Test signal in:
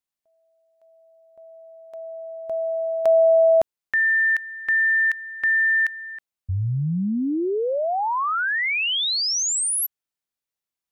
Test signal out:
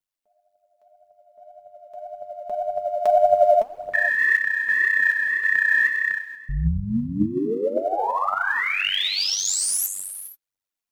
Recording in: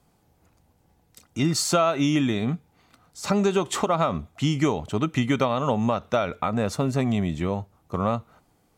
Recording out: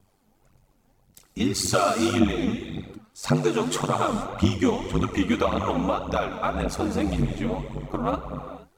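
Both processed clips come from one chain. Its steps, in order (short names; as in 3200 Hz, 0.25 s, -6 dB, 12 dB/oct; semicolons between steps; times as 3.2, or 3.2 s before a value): non-linear reverb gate 0.5 s flat, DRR 6.5 dB; ring modulator 48 Hz; phaser 1.8 Hz, delay 4.8 ms, feedback 58%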